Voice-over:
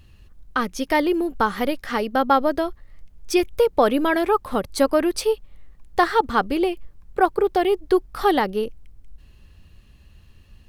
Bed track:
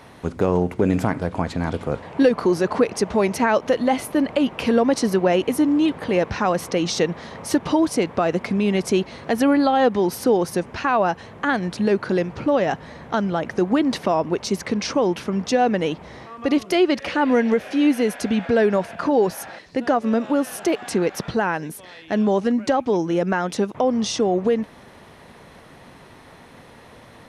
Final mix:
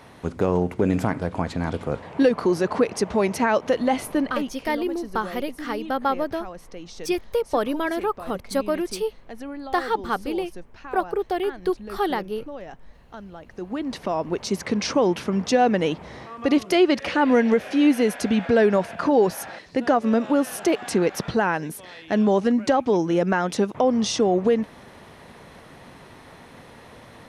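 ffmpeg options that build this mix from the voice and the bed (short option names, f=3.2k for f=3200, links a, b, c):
-filter_complex "[0:a]adelay=3750,volume=-5.5dB[a];[1:a]volume=16dB,afade=t=out:st=4.13:d=0.46:silence=0.158489,afade=t=in:st=13.48:d=1.37:silence=0.125893[b];[a][b]amix=inputs=2:normalize=0"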